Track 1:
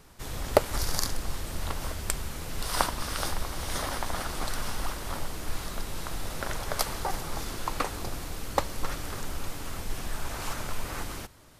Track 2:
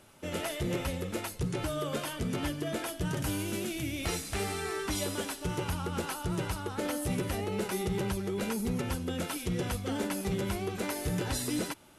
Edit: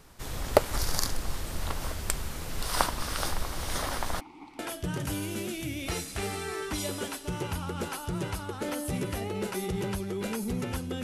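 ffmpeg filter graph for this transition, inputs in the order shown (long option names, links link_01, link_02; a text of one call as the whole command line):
ffmpeg -i cue0.wav -i cue1.wav -filter_complex "[0:a]asplit=3[link_01][link_02][link_03];[link_01]afade=type=out:start_time=4.19:duration=0.02[link_04];[link_02]asplit=3[link_05][link_06][link_07];[link_05]bandpass=frequency=300:width_type=q:width=8,volume=0dB[link_08];[link_06]bandpass=frequency=870:width_type=q:width=8,volume=-6dB[link_09];[link_07]bandpass=frequency=2240:width_type=q:width=8,volume=-9dB[link_10];[link_08][link_09][link_10]amix=inputs=3:normalize=0,afade=type=in:start_time=4.19:duration=0.02,afade=type=out:start_time=4.59:duration=0.02[link_11];[link_03]afade=type=in:start_time=4.59:duration=0.02[link_12];[link_04][link_11][link_12]amix=inputs=3:normalize=0,apad=whole_dur=11.03,atrim=end=11.03,atrim=end=4.592[link_13];[1:a]atrim=start=2.758:end=9.2[link_14];[link_13][link_14]acrossfade=duration=0.004:curve1=hsin:curve2=hsin" out.wav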